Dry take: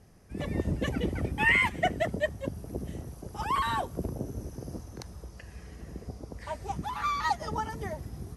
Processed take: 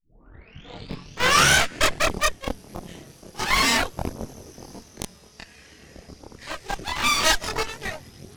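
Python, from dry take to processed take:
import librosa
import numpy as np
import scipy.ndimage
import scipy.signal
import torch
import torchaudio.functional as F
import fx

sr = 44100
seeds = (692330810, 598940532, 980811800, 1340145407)

p1 = fx.tape_start_head(x, sr, length_s=2.11)
p2 = fx.weighting(p1, sr, curve='D')
p3 = fx.schmitt(p2, sr, flips_db=-25.5)
p4 = p2 + F.gain(torch.from_numpy(p3), -7.5).numpy()
p5 = fx.cheby_harmonics(p4, sr, harmonics=(8,), levels_db=(-6,), full_scale_db=-9.0)
p6 = fx.chorus_voices(p5, sr, voices=2, hz=0.24, base_ms=25, depth_ms=3.5, mix_pct=50)
y = F.gain(torch.from_numpy(p6), 2.0).numpy()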